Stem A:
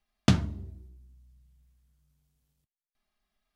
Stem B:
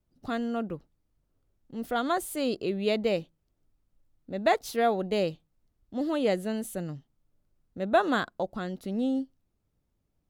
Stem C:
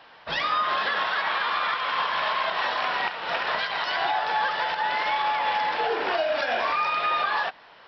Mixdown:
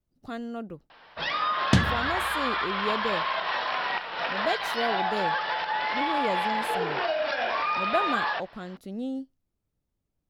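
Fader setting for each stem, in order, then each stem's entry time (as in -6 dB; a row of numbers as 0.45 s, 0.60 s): +1.0 dB, -4.5 dB, -2.5 dB; 1.45 s, 0.00 s, 0.90 s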